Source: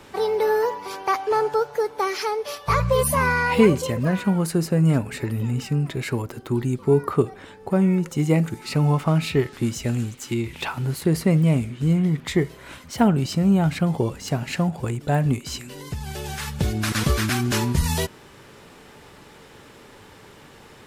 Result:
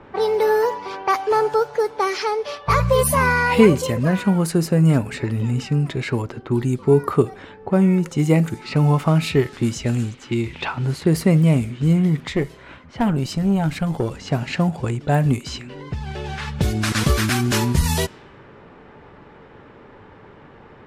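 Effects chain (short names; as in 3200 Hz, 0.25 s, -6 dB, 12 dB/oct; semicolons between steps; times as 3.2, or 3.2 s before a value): low-pass opened by the level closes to 1500 Hz, open at -18.5 dBFS; 12.28–14.11 tube stage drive 15 dB, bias 0.6; gain +3 dB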